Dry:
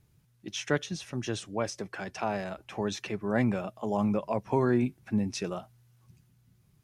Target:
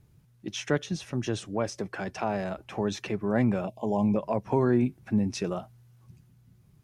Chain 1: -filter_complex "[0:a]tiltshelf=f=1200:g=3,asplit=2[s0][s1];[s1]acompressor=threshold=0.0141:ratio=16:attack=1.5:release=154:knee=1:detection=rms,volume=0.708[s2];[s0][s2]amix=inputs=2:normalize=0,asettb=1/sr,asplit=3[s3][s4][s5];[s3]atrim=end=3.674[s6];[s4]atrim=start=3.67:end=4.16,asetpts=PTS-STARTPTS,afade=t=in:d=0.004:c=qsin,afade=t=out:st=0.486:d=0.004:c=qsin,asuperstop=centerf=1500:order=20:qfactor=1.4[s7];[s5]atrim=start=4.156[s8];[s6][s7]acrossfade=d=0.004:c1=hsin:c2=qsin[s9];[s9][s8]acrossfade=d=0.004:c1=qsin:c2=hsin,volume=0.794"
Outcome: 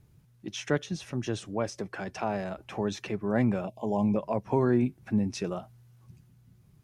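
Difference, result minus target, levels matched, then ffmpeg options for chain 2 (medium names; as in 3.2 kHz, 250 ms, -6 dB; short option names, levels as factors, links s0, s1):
compression: peak gain reduction +9 dB
-filter_complex "[0:a]tiltshelf=f=1200:g=3,asplit=2[s0][s1];[s1]acompressor=threshold=0.0422:ratio=16:attack=1.5:release=154:knee=1:detection=rms,volume=0.708[s2];[s0][s2]amix=inputs=2:normalize=0,asettb=1/sr,asplit=3[s3][s4][s5];[s3]atrim=end=3.674[s6];[s4]atrim=start=3.67:end=4.16,asetpts=PTS-STARTPTS,afade=t=in:d=0.004:c=qsin,afade=t=out:st=0.486:d=0.004:c=qsin,asuperstop=centerf=1500:order=20:qfactor=1.4[s7];[s5]atrim=start=4.156[s8];[s6][s7]acrossfade=d=0.004:c1=hsin:c2=qsin[s9];[s9][s8]acrossfade=d=0.004:c1=qsin:c2=hsin,volume=0.794"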